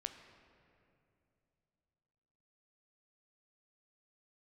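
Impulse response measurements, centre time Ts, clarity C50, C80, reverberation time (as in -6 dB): 28 ms, 8.5 dB, 9.5 dB, 2.7 s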